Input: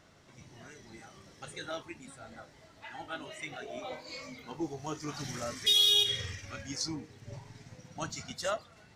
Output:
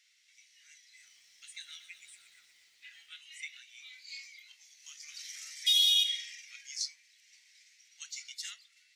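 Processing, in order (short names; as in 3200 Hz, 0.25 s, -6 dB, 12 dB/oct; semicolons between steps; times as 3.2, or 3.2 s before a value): Chebyshev high-pass 2100 Hz, order 4; 0.84–3.09 lo-fi delay 0.119 s, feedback 80%, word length 11-bit, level -12 dB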